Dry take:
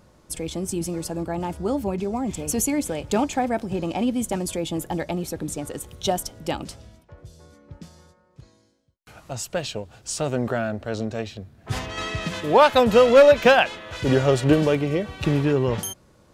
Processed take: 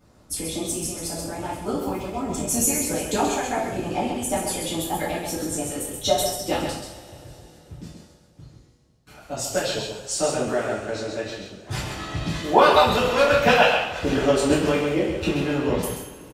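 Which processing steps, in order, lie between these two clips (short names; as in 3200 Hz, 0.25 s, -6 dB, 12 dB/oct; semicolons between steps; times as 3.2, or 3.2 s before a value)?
echo 0.132 s -5 dB; harmonic-percussive split harmonic -15 dB; two-slope reverb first 0.51 s, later 3.4 s, from -20 dB, DRR -9 dB; gain -5 dB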